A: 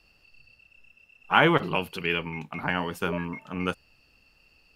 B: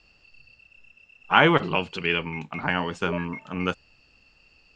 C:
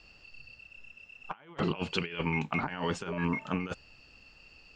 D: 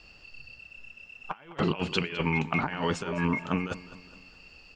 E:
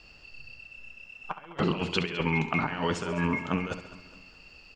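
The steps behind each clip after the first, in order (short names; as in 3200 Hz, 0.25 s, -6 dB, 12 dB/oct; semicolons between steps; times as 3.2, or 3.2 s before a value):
elliptic low-pass 7500 Hz, stop band 50 dB; gain +3 dB
negative-ratio compressor -30 dBFS, ratio -0.5; gain -3 dB
feedback echo 0.207 s, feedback 47%, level -16.5 dB; gain +3.5 dB
feedback echo 68 ms, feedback 57%, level -12 dB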